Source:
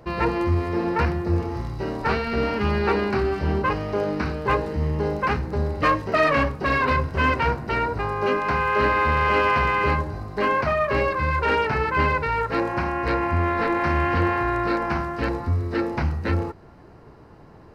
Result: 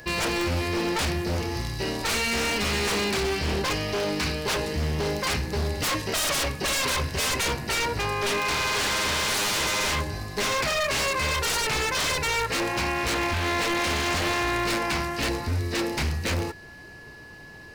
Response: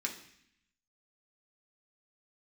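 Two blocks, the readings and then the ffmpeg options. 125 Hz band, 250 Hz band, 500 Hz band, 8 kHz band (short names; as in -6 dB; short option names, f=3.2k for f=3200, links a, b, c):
-5.0 dB, -4.5 dB, -5.0 dB, n/a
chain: -af "aexciter=amount=4.8:drive=5.9:freq=2.1k,aeval=exprs='val(0)+0.00708*sin(2*PI*1700*n/s)':c=same,aeval=exprs='0.112*(abs(mod(val(0)/0.112+3,4)-2)-1)':c=same,volume=-1.5dB"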